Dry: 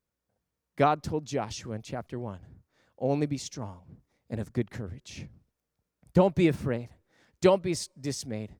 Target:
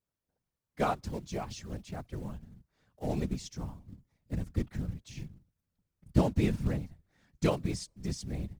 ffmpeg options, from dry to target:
-filter_complex "[0:a]acrusher=bits=5:mode=log:mix=0:aa=0.000001,asubboost=boost=4.5:cutoff=160,acrossover=split=9700[a][b];[b]acompressor=threshold=-55dB:ratio=4:attack=1:release=60[c];[a][c]amix=inputs=2:normalize=0,afftfilt=real='hypot(re,im)*cos(2*PI*random(0))':imag='hypot(re,im)*sin(2*PI*random(1))':win_size=512:overlap=0.75"

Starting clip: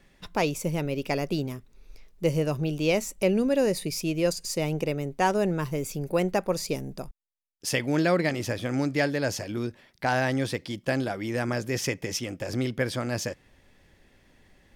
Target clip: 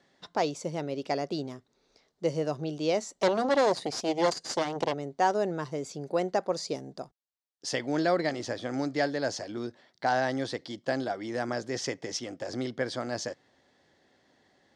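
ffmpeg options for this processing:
-filter_complex "[0:a]asettb=1/sr,asplit=3[a][b][c];[a]atrim=end=3.204[d];[b]atrim=start=3.2:end=4.94,asetpts=PTS-STARTPTS,afade=t=in:d=0.004:c=qsin,afade=t=out:st=1.736:d=0.004:c=qsin,aeval=exprs='0.251*(cos(1*acos(clip(val(0)/0.251,-1,1)))-cos(1*PI/2))+0.0794*(cos(6*acos(clip(val(0)/0.251,-1,1)))-cos(6*PI/2))':c=same[e];[c]atrim=start=4.936[f];[d][e]acrossfade=d=0.004:c1=hsin:c2=qsin[g];[g][f]acrossfade=d=0.004:c1=qsin:c2=hsin,highpass=180,equalizer=f=190:t=q:w=4:g=-5,equalizer=f=720:t=q:w=4:g=5,equalizer=f=2.5k:t=q:w=4:g=-10,equalizer=f=4.2k:t=q:w=4:g=4,lowpass=f=7.3k:w=0.5412,lowpass=f=7.3k:w=1.3066,volume=-3dB"

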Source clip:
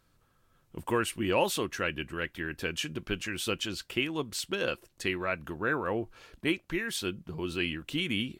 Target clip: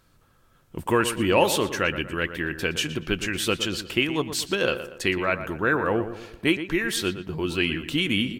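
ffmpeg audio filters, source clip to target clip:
-filter_complex "[0:a]asplit=2[a][b];[b]adelay=118,lowpass=f=2.6k:p=1,volume=-10.5dB,asplit=2[c][d];[d]adelay=118,lowpass=f=2.6k:p=1,volume=0.43,asplit=2[e][f];[f]adelay=118,lowpass=f=2.6k:p=1,volume=0.43,asplit=2[g][h];[h]adelay=118,lowpass=f=2.6k:p=1,volume=0.43,asplit=2[i][j];[j]adelay=118,lowpass=f=2.6k:p=1,volume=0.43[k];[a][c][e][g][i][k]amix=inputs=6:normalize=0,volume=7dB"

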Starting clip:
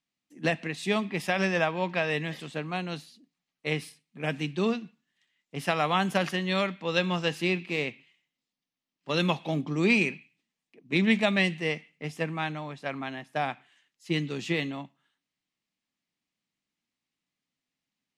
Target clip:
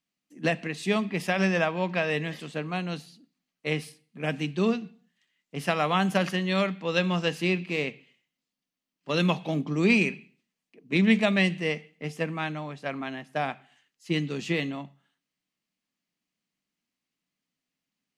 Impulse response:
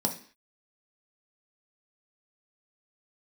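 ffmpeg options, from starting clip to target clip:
-filter_complex "[0:a]asplit=2[a][b];[1:a]atrim=start_sample=2205,asetrate=35280,aresample=44100[c];[b][c]afir=irnorm=-1:irlink=0,volume=-24.5dB[d];[a][d]amix=inputs=2:normalize=0"

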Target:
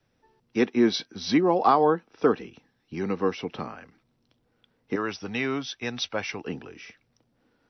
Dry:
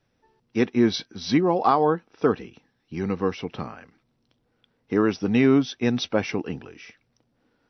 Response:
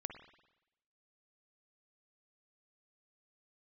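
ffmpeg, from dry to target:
-filter_complex "[0:a]asettb=1/sr,asplit=3[a][b][c];[a]atrim=end=4.954[d];[b]atrim=start=4.95:end=6.45,asetpts=PTS-STARTPTS,afade=t=in:d=0.004:c=qsin,afade=t=out:st=1.496:d=0.004:c=qsin,equalizer=f=270:w=0.54:g=-12[e];[c]atrim=start=6.446[f];[d][e]acrossfade=d=0.004:c1=hsin:c2=qsin[g];[g][f]acrossfade=d=0.004:c1=qsin:c2=hsin,acrossover=split=180|640|1400[h][i][j][k];[h]acompressor=threshold=-44dB:ratio=6[l];[l][i][j][k]amix=inputs=4:normalize=0"

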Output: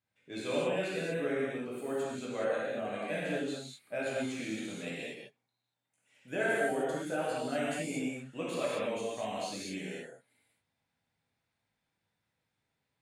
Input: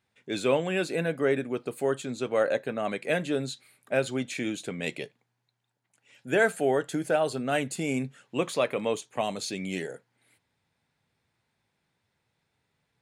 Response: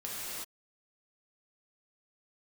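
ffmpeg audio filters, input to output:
-filter_complex "[1:a]atrim=start_sample=2205,afade=t=out:st=0.37:d=0.01,atrim=end_sample=16758,asetrate=57330,aresample=44100[a];[0:a][a]afir=irnorm=-1:irlink=0,volume=-6.5dB"

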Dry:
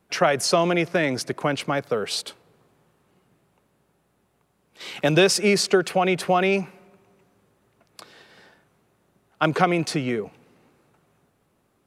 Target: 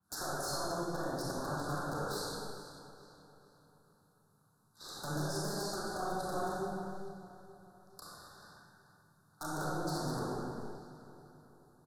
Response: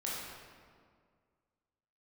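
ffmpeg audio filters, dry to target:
-filter_complex "[0:a]highpass=f=47:w=0.5412,highpass=f=47:w=1.3066,equalizer=f=12k:t=o:w=0.43:g=4.5,bandreject=f=60:t=h:w=6,bandreject=f=120:t=h:w=6,bandreject=f=180:t=h:w=6,bandreject=f=240:t=h:w=6,acompressor=threshold=-28dB:ratio=20,acrossover=split=240|860[a][b][c];[b]acrusher=bits=5:dc=4:mix=0:aa=0.000001[d];[a][d][c]amix=inputs=3:normalize=0,aeval=exprs='(mod(16.8*val(0)+1,2)-1)/16.8':c=same,asuperstop=centerf=2500:order=12:qfactor=1.1,asplit=2[e][f];[f]adelay=436,lowpass=f=4.3k:p=1,volume=-14dB,asplit=2[g][h];[h]adelay=436,lowpass=f=4.3k:p=1,volume=0.49,asplit=2[i][j];[j]adelay=436,lowpass=f=4.3k:p=1,volume=0.49,asplit=2[k][l];[l]adelay=436,lowpass=f=4.3k:p=1,volume=0.49,asplit=2[m][n];[n]adelay=436,lowpass=f=4.3k:p=1,volume=0.49[o];[e][g][i][k][m][o]amix=inputs=6:normalize=0[p];[1:a]atrim=start_sample=2205,afade=t=out:st=0.41:d=0.01,atrim=end_sample=18522,asetrate=26460,aresample=44100[q];[p][q]afir=irnorm=-1:irlink=0,adynamicequalizer=threshold=0.00501:dfrequency=3200:dqfactor=0.7:tfrequency=3200:tqfactor=0.7:attack=5:release=100:ratio=0.375:range=2.5:mode=cutabove:tftype=highshelf,volume=-7dB"

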